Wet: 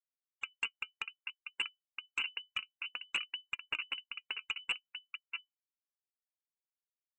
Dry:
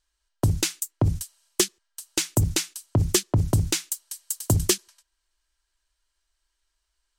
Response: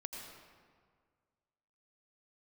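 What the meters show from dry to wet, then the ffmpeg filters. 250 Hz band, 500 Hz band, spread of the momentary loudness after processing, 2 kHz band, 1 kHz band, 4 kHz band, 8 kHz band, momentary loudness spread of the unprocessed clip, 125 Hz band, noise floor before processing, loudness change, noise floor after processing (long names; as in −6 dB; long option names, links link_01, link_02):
−38.0 dB, −33.5 dB, 8 LU, 0.0 dB, −12.5 dB, −7.5 dB, −33.5 dB, 10 LU, below −40 dB, −78 dBFS, −14.5 dB, below −85 dBFS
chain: -filter_complex "[0:a]highpass=1300,aemphasis=mode=reproduction:type=bsi,acrusher=samples=38:mix=1:aa=0.000001,acompressor=threshold=-37dB:ratio=12,aeval=exprs='val(0)+0.00126*(sin(2*PI*50*n/s)+sin(2*PI*2*50*n/s)/2+sin(2*PI*3*50*n/s)/3+sin(2*PI*4*50*n/s)/4+sin(2*PI*5*50*n/s)/5)':channel_layout=same,acrusher=bits=5:mix=0:aa=0.000001,asplit=2[link_01][link_02];[link_02]adelay=641.4,volume=-7dB,highshelf=frequency=4000:gain=-14.4[link_03];[link_01][link_03]amix=inputs=2:normalize=0,lowpass=frequency=2600:width_type=q:width=0.5098,lowpass=frequency=2600:width_type=q:width=0.6013,lowpass=frequency=2600:width_type=q:width=0.9,lowpass=frequency=2600:width_type=q:width=2.563,afreqshift=-3000,flanger=delay=2.9:depth=1.7:regen=68:speed=0.57:shape=sinusoidal,asoftclip=type=hard:threshold=-35.5dB,afftdn=noise_reduction=18:noise_floor=-60,acompressor=mode=upward:threshold=-58dB:ratio=2.5,volume=9dB"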